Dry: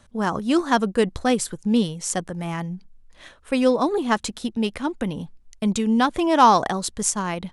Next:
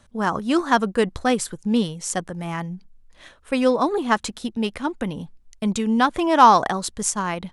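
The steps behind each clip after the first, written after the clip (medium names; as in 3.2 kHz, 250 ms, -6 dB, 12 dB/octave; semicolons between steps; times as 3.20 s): dynamic bell 1.3 kHz, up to +4 dB, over -34 dBFS, Q 0.77; trim -1 dB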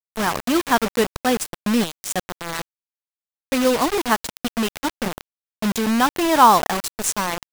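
bit crusher 4-bit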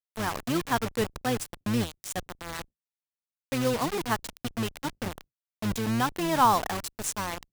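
octave divider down 1 oct, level -3 dB; trim -9 dB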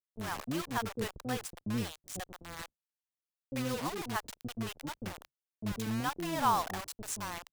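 bands offset in time lows, highs 40 ms, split 510 Hz; trim -6.5 dB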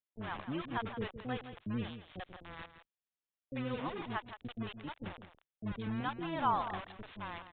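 spectral gate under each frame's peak -30 dB strong; delay 166 ms -11.5 dB; resampled via 8 kHz; trim -3 dB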